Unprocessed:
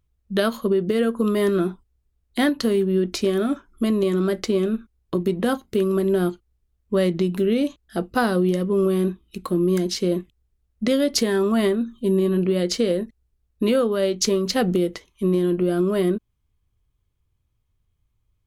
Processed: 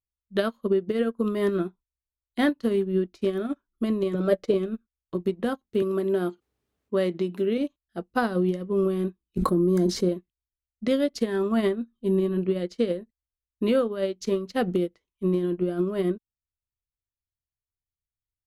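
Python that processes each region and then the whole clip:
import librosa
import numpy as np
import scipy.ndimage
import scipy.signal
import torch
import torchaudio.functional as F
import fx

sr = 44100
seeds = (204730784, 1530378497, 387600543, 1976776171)

y = fx.chain(x, sr, fx.peak_eq(hz=530.0, db=13.5, octaves=0.35),
    fx.comb(ms=6.7, depth=0.56), at=(4.14, 4.54))
y = fx.chain(y, sr, fx.highpass(hz=220.0, slope=12),
    fx.env_flatten(amount_pct=50), at=(5.82, 7.58))
y = fx.chain(y, sr, fx.peak_eq(hz=2700.0, db=-13.0, octaves=0.99),
    fx.env_flatten(amount_pct=100), at=(9.37, 10.09))
y = fx.high_shelf(y, sr, hz=4700.0, db=-8.5)
y = fx.upward_expand(y, sr, threshold_db=-34.0, expansion=2.5)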